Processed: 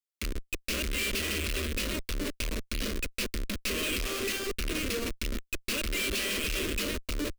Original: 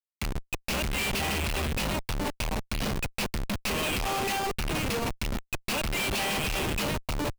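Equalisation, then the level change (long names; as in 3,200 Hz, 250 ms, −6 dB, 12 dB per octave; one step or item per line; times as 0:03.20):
phaser with its sweep stopped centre 340 Hz, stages 4
0.0 dB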